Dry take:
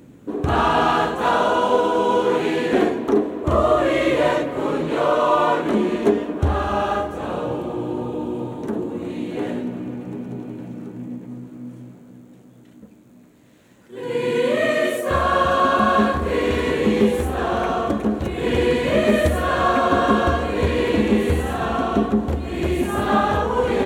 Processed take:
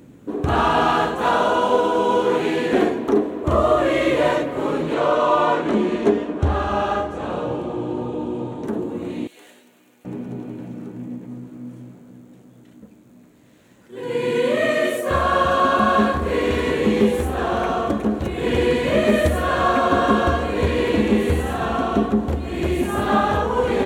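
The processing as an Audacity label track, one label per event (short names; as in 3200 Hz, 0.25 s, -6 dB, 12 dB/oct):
4.940000	8.640000	LPF 8300 Hz
9.270000	10.050000	differentiator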